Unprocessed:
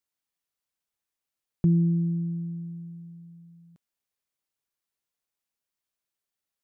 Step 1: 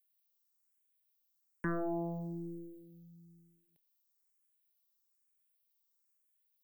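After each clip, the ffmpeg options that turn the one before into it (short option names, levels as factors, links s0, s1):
-filter_complex "[0:a]aeval=exprs='0.188*(cos(1*acos(clip(val(0)/0.188,-1,1)))-cos(1*PI/2))+0.0531*(cos(4*acos(clip(val(0)/0.188,-1,1)))-cos(4*PI/2))+0.0473*(cos(8*acos(clip(val(0)/0.188,-1,1)))-cos(8*PI/2))':c=same,aemphasis=mode=production:type=bsi,asplit=2[s0][s1];[s1]afreqshift=1.1[s2];[s0][s2]amix=inputs=2:normalize=1,volume=0.531"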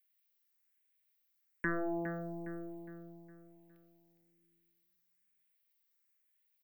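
-filter_complex "[0:a]equalizer=f=125:t=o:w=1:g=-9,equalizer=f=1000:t=o:w=1:g=-5,equalizer=f=2000:t=o:w=1:g=10,equalizer=f=8000:t=o:w=1:g=-6,asplit=2[s0][s1];[s1]adelay=411,lowpass=f=4200:p=1,volume=0.316,asplit=2[s2][s3];[s3]adelay=411,lowpass=f=4200:p=1,volume=0.44,asplit=2[s4][s5];[s5]adelay=411,lowpass=f=4200:p=1,volume=0.44,asplit=2[s6][s7];[s7]adelay=411,lowpass=f=4200:p=1,volume=0.44,asplit=2[s8][s9];[s9]adelay=411,lowpass=f=4200:p=1,volume=0.44[s10];[s2][s4][s6][s8][s10]amix=inputs=5:normalize=0[s11];[s0][s11]amix=inputs=2:normalize=0,volume=1.12"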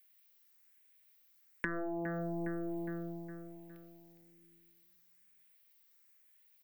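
-af "acompressor=threshold=0.00631:ratio=10,volume=3.16"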